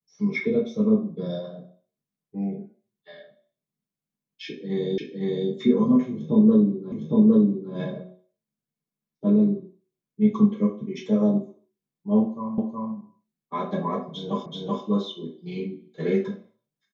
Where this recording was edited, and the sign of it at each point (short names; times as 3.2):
4.98 repeat of the last 0.51 s
6.92 repeat of the last 0.81 s
12.58 repeat of the last 0.37 s
14.46 repeat of the last 0.38 s